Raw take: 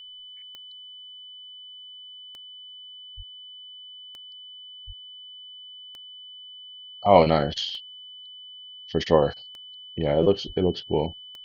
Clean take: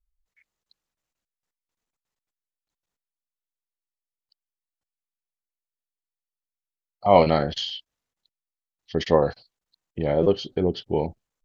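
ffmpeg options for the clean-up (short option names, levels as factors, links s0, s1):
-filter_complex "[0:a]adeclick=t=4,bandreject=f=3000:w=30,asplit=3[s0][s1][s2];[s0]afade=t=out:st=3.16:d=0.02[s3];[s1]highpass=f=140:w=0.5412,highpass=f=140:w=1.3066,afade=t=in:st=3.16:d=0.02,afade=t=out:st=3.28:d=0.02[s4];[s2]afade=t=in:st=3.28:d=0.02[s5];[s3][s4][s5]amix=inputs=3:normalize=0,asplit=3[s6][s7][s8];[s6]afade=t=out:st=4.86:d=0.02[s9];[s7]highpass=f=140:w=0.5412,highpass=f=140:w=1.3066,afade=t=in:st=4.86:d=0.02,afade=t=out:st=4.98:d=0.02[s10];[s8]afade=t=in:st=4.98:d=0.02[s11];[s9][s10][s11]amix=inputs=3:normalize=0,asplit=3[s12][s13][s14];[s12]afade=t=out:st=10.46:d=0.02[s15];[s13]highpass=f=140:w=0.5412,highpass=f=140:w=1.3066,afade=t=in:st=10.46:d=0.02,afade=t=out:st=10.58:d=0.02[s16];[s14]afade=t=in:st=10.58:d=0.02[s17];[s15][s16][s17]amix=inputs=3:normalize=0"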